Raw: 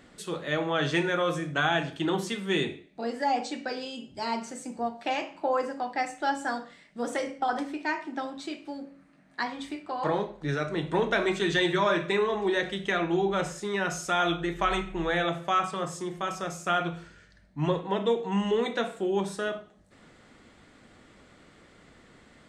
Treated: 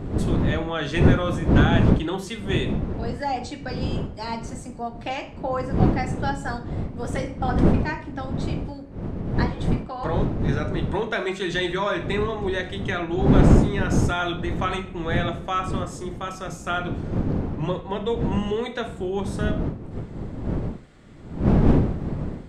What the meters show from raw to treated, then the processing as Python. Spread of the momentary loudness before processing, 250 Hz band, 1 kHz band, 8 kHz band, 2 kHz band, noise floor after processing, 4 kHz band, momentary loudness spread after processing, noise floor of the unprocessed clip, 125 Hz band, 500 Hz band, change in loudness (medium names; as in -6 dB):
10 LU, +8.5 dB, +0.5 dB, 0.0 dB, 0.0 dB, -39 dBFS, 0.0 dB, 13 LU, -57 dBFS, +15.0 dB, +2.0 dB, +4.5 dB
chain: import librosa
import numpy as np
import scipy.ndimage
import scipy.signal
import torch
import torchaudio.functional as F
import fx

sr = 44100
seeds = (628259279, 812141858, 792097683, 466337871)

y = fx.dmg_wind(x, sr, seeds[0], corner_hz=220.0, level_db=-24.0)